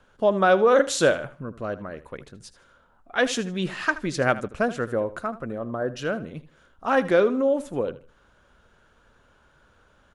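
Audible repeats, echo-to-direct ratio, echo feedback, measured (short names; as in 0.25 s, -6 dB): 2, -15.5 dB, 26%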